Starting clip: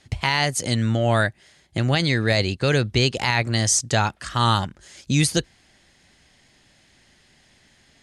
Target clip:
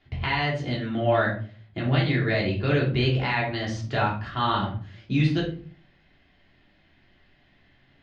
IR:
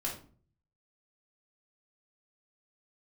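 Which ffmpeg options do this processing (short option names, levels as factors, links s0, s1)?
-filter_complex "[0:a]lowpass=f=3500:w=0.5412,lowpass=f=3500:w=1.3066[s0];[1:a]atrim=start_sample=2205[s1];[s0][s1]afir=irnorm=-1:irlink=0,volume=0.501"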